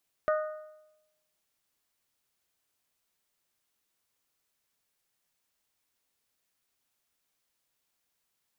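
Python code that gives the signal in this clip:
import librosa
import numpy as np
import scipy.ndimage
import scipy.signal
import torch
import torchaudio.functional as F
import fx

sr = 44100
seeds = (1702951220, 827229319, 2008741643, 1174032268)

y = fx.strike_metal(sr, length_s=1.55, level_db=-22.5, body='bell', hz=617.0, decay_s=0.94, tilt_db=6, modes=4)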